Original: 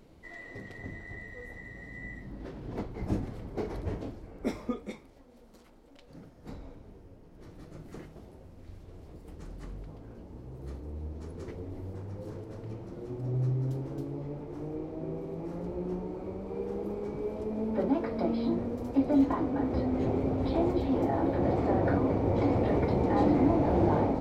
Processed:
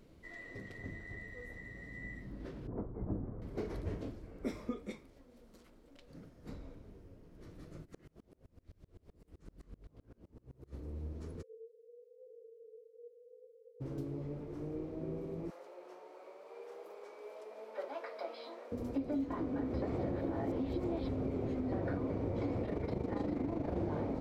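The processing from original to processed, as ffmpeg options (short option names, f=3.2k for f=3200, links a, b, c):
-filter_complex "[0:a]asettb=1/sr,asplit=3[a][b][c];[a]atrim=end=2.674[d];[b]atrim=start=2.67:end=3.42,asetpts=PTS-STARTPTS,afade=t=in:d=0.004:c=qsin,afade=t=out:st=0.746:d=0.004:c=qsin,lowpass=f=1.2k:w=0.5412,lowpass=f=1.2k:w=1.3066[e];[c]atrim=start=3.416[f];[d][e]acrossfade=d=0.004:c1=hsin:c2=qsin[g];[g][f]acrossfade=d=0.004:c1=qsin:c2=hsin,asplit=3[h][i][j];[h]afade=t=out:st=7.84:d=0.02[k];[i]aeval=exprs='val(0)*pow(10,-31*if(lt(mod(-7.8*n/s,1),2*abs(-7.8)/1000),1-mod(-7.8*n/s,1)/(2*abs(-7.8)/1000),(mod(-7.8*n/s,1)-2*abs(-7.8)/1000)/(1-2*abs(-7.8)/1000))/20)':c=same,afade=t=in:st=7.84:d=0.02,afade=t=out:st=10.72:d=0.02[l];[j]afade=t=in:st=10.72:d=0.02[m];[k][l][m]amix=inputs=3:normalize=0,asplit=3[n][o][p];[n]afade=t=out:st=11.41:d=0.02[q];[o]asuperpass=centerf=470:order=12:qfactor=6.3,afade=t=in:st=11.41:d=0.02,afade=t=out:st=13.8:d=0.02[r];[p]afade=t=in:st=13.8:d=0.02[s];[q][r][s]amix=inputs=3:normalize=0,asettb=1/sr,asplit=3[t][u][v];[t]atrim=end=15.504[w];[u]atrim=start=15.5:end=18.72,asetpts=PTS-STARTPTS,afade=t=in:d=0.004:c=qsin,afade=t=out:st=3.216:d=0.004:c=qsin,highpass=f=580:w=0.5412,highpass=f=580:w=1.3066[x];[v]atrim=start=18.716[y];[w][x]acrossfade=d=0.004:c1=hsin:c2=qsin[z];[z][y]acrossfade=d=0.004:c1=qsin:c2=hsin,asettb=1/sr,asplit=3[aa][ab][ac];[aa]atrim=end=22.654[ad];[ab]atrim=start=22.65:end=23.77,asetpts=PTS-STARTPTS,afade=t=in:d=0.004:c=qsin,afade=t=out:st=1.116:d=0.004:c=qsin,tremolo=f=25:d=0.621[ae];[ac]atrim=start=23.766[af];[ad][ae]acrossfade=d=0.004:c1=hsin:c2=qsin[ag];[ag][af]acrossfade=d=0.004:c1=qsin:c2=hsin,asplit=3[ah][ai][aj];[ah]atrim=end=19.822[ak];[ai]atrim=start=19.818:end=21.722,asetpts=PTS-STARTPTS,areverse[al];[aj]atrim=start=21.718[am];[ak][al]acrossfade=d=0.004:c1=hsin:c2=hsin[an];[an][am]acrossfade=d=0.004:c1=hsin:c2=hsin,equalizer=f=820:w=3.1:g=-6.5,acompressor=threshold=-29dB:ratio=6,volume=-3.5dB"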